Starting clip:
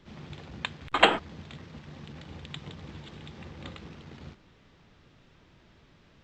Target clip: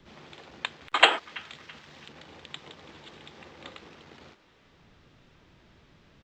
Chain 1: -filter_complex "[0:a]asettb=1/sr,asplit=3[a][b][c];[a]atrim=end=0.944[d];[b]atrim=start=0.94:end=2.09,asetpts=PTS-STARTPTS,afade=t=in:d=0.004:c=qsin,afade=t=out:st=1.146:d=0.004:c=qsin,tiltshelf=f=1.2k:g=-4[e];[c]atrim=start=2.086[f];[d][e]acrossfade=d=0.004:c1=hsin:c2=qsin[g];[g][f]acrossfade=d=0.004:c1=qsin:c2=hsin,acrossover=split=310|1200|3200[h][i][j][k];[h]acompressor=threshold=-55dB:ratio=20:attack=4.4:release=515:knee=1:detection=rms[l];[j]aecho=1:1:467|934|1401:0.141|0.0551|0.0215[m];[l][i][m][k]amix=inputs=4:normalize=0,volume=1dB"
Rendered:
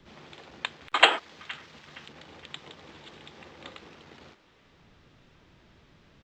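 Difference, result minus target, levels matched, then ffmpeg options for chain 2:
echo 0.136 s late
-filter_complex "[0:a]asettb=1/sr,asplit=3[a][b][c];[a]atrim=end=0.944[d];[b]atrim=start=0.94:end=2.09,asetpts=PTS-STARTPTS,afade=t=in:d=0.004:c=qsin,afade=t=out:st=1.146:d=0.004:c=qsin,tiltshelf=f=1.2k:g=-4[e];[c]atrim=start=2.086[f];[d][e]acrossfade=d=0.004:c1=hsin:c2=qsin[g];[g][f]acrossfade=d=0.004:c1=qsin:c2=hsin,acrossover=split=310|1200|3200[h][i][j][k];[h]acompressor=threshold=-55dB:ratio=20:attack=4.4:release=515:knee=1:detection=rms[l];[j]aecho=1:1:331|662|993:0.141|0.0551|0.0215[m];[l][i][m][k]amix=inputs=4:normalize=0,volume=1dB"

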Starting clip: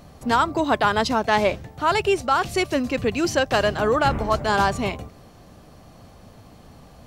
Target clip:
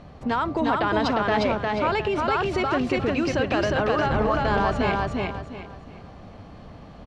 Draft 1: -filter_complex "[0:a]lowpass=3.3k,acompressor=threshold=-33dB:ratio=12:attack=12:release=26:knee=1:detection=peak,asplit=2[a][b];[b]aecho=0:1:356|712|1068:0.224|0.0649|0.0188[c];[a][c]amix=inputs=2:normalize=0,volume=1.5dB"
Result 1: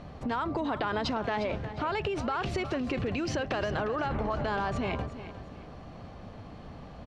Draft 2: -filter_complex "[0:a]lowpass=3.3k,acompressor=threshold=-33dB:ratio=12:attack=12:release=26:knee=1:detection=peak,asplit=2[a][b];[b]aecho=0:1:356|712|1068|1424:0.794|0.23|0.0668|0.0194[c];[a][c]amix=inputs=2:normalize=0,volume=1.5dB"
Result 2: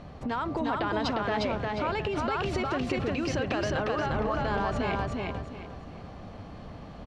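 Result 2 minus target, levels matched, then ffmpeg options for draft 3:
compressor: peak gain reduction +7 dB
-filter_complex "[0:a]lowpass=3.3k,acompressor=threshold=-25.5dB:ratio=12:attack=12:release=26:knee=1:detection=peak,asplit=2[a][b];[b]aecho=0:1:356|712|1068|1424:0.794|0.23|0.0668|0.0194[c];[a][c]amix=inputs=2:normalize=0,volume=1.5dB"

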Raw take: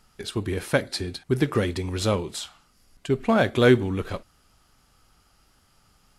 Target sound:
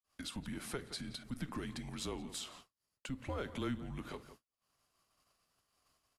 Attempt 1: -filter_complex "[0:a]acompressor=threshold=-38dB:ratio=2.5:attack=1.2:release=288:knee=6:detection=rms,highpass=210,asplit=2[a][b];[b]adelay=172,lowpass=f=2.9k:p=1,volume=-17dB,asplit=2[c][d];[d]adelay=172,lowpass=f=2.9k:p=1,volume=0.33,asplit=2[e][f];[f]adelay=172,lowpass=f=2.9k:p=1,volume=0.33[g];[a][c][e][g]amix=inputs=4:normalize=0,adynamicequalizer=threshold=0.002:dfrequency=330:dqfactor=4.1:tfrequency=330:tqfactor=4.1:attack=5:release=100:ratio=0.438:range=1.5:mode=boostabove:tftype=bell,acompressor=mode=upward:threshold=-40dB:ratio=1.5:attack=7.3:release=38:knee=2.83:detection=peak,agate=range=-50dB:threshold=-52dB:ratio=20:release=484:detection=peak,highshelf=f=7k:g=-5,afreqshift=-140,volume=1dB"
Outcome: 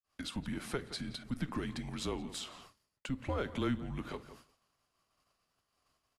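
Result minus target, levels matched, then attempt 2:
compressor: peak gain reduction -5 dB; 8000 Hz band -4.5 dB
-filter_complex "[0:a]acompressor=threshold=-46dB:ratio=2.5:attack=1.2:release=288:knee=6:detection=rms,highpass=210,asplit=2[a][b];[b]adelay=172,lowpass=f=2.9k:p=1,volume=-17dB,asplit=2[c][d];[d]adelay=172,lowpass=f=2.9k:p=1,volume=0.33,asplit=2[e][f];[f]adelay=172,lowpass=f=2.9k:p=1,volume=0.33[g];[a][c][e][g]amix=inputs=4:normalize=0,adynamicequalizer=threshold=0.002:dfrequency=330:dqfactor=4.1:tfrequency=330:tqfactor=4.1:attack=5:release=100:ratio=0.438:range=1.5:mode=boostabove:tftype=bell,acompressor=mode=upward:threshold=-40dB:ratio=1.5:attack=7.3:release=38:knee=2.83:detection=peak,agate=range=-50dB:threshold=-52dB:ratio=20:release=484:detection=peak,highshelf=f=7k:g=2.5,afreqshift=-140,volume=1dB"

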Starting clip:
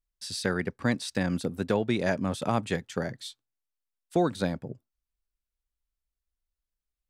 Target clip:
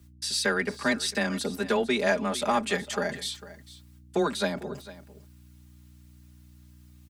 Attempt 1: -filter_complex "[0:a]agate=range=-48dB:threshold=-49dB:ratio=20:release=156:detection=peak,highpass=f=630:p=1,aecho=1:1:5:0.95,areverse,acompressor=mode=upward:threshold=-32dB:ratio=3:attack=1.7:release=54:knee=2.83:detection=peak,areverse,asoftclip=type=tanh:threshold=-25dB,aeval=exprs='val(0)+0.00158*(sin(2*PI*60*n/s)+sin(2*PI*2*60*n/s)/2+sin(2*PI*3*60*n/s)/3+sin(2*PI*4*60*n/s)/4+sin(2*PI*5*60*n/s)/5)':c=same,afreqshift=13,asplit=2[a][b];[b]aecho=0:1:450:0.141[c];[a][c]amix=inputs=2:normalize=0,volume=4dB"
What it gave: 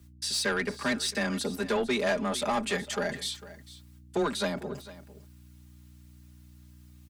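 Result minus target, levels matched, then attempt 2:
soft clip: distortion +14 dB
-filter_complex "[0:a]agate=range=-48dB:threshold=-49dB:ratio=20:release=156:detection=peak,highpass=f=630:p=1,aecho=1:1:5:0.95,areverse,acompressor=mode=upward:threshold=-32dB:ratio=3:attack=1.7:release=54:knee=2.83:detection=peak,areverse,asoftclip=type=tanh:threshold=-14.5dB,aeval=exprs='val(0)+0.00158*(sin(2*PI*60*n/s)+sin(2*PI*2*60*n/s)/2+sin(2*PI*3*60*n/s)/3+sin(2*PI*4*60*n/s)/4+sin(2*PI*5*60*n/s)/5)':c=same,afreqshift=13,asplit=2[a][b];[b]aecho=0:1:450:0.141[c];[a][c]amix=inputs=2:normalize=0,volume=4dB"

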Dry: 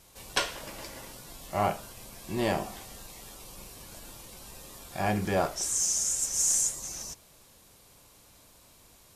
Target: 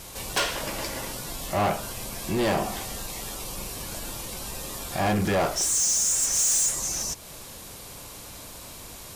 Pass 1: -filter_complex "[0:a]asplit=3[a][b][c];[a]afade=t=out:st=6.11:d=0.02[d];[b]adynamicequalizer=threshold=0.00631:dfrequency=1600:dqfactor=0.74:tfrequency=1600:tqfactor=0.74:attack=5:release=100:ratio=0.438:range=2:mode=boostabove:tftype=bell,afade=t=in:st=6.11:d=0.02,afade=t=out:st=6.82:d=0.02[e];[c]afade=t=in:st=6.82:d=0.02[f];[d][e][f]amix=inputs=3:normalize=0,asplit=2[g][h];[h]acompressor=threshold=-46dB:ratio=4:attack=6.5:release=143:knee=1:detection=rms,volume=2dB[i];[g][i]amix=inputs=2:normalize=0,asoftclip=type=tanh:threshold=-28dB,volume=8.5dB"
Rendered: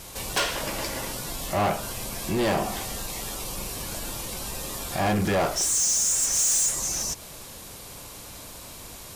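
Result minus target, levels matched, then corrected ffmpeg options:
compressor: peak gain reduction -5 dB
-filter_complex "[0:a]asplit=3[a][b][c];[a]afade=t=out:st=6.11:d=0.02[d];[b]adynamicequalizer=threshold=0.00631:dfrequency=1600:dqfactor=0.74:tfrequency=1600:tqfactor=0.74:attack=5:release=100:ratio=0.438:range=2:mode=boostabove:tftype=bell,afade=t=in:st=6.11:d=0.02,afade=t=out:st=6.82:d=0.02[e];[c]afade=t=in:st=6.82:d=0.02[f];[d][e][f]amix=inputs=3:normalize=0,asplit=2[g][h];[h]acompressor=threshold=-52.5dB:ratio=4:attack=6.5:release=143:knee=1:detection=rms,volume=2dB[i];[g][i]amix=inputs=2:normalize=0,asoftclip=type=tanh:threshold=-28dB,volume=8.5dB"

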